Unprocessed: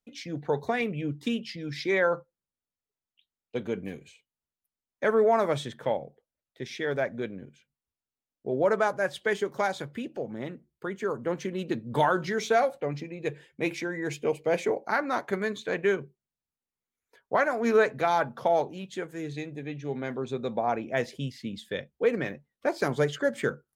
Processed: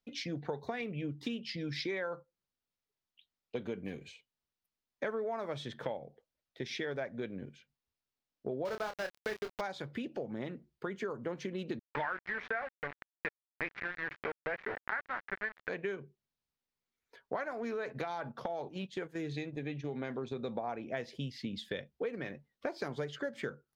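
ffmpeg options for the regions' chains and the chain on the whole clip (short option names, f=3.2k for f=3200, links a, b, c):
-filter_complex "[0:a]asettb=1/sr,asplit=3[a][b][c];[a]atrim=end=8.654[d];[b]atrim=start=8.65:end=9.61,asetpts=PTS-STARTPTS,afade=t=in:d=0.004:c=qsin,afade=t=out:st=0.956:d=0.004:c=qsin,aeval=exprs='val(0)*gte(abs(val(0)),0.0422)':c=same,asplit=2[e][f];[f]adelay=28,volume=-8dB[g];[e][g]amix=inputs=2:normalize=0,atrim=end_sample=42336[h];[c]atrim=start=9.606[i];[d][h]acrossfade=d=0.004:c1=hsin:c2=qsin[j];[j][i]acrossfade=d=0.004:c1=qsin:c2=hsin,asettb=1/sr,asplit=3[k][l][m];[k]atrim=end=11.794[n];[l]atrim=start=11.79:end=15.69,asetpts=PTS-STARTPTS,afade=t=in:d=0.004:c=qsin,afade=t=out:st=3.896:d=0.004:c=qsin,tiltshelf=f=880:g=-4.5,aeval=exprs='val(0)*gte(abs(val(0)),0.0376)':c=same,lowpass=f=1.8k:t=q:w=3.5[o];[m]atrim=start=15.686[p];[n][o]acrossfade=d=0.004:c1=hsin:c2=qsin[q];[q][p]acrossfade=d=0.004:c1=qsin:c2=hsin,asettb=1/sr,asplit=3[r][s][t];[r]atrim=end=17.514[u];[s]atrim=start=17.51:end=20.48,asetpts=PTS-STARTPTS,afade=t=in:d=0.004:c=qsin,afade=t=out:st=2.966:d=0.004:c=qsin,acompressor=threshold=-26dB:ratio=6:attack=3.2:release=140:knee=1:detection=peak,agate=range=-8dB:threshold=-42dB:ratio=16:release=100:detection=peak[v];[t]atrim=start=20.476[w];[u][v]acrossfade=d=0.004:c1=hsin:c2=qsin[x];[x][w]acrossfade=d=0.004:c1=qsin:c2=hsin,highshelf=f=6.3k:t=q:w=1.5:g=-6.5,acompressor=threshold=-36dB:ratio=6,volume=1dB"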